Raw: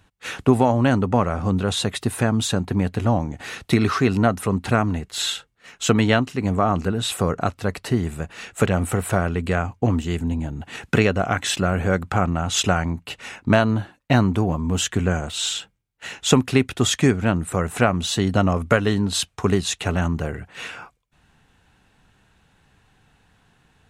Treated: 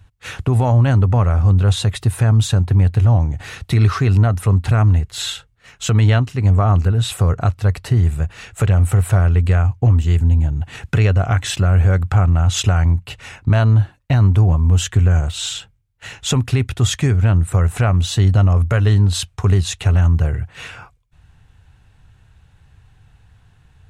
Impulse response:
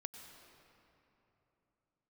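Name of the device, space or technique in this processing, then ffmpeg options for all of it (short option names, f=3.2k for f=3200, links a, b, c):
car stereo with a boomy subwoofer: -af "lowshelf=f=150:t=q:w=1.5:g=12,alimiter=limit=-6.5dB:level=0:latency=1:release=60"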